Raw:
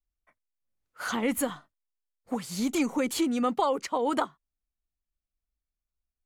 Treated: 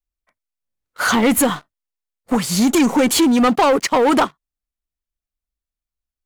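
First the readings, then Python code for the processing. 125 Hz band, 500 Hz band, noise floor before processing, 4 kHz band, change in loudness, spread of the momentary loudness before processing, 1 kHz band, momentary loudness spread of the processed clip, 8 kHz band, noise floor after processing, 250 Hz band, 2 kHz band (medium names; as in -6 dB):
+16.0 dB, +12.0 dB, under -85 dBFS, +14.5 dB, +13.0 dB, 9 LU, +12.0 dB, 8 LU, +14.5 dB, under -85 dBFS, +13.0 dB, +14.5 dB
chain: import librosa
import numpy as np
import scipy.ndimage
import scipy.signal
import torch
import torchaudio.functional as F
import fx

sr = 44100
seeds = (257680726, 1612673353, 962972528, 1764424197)

y = fx.leveller(x, sr, passes=3)
y = y * librosa.db_to_amplitude(5.5)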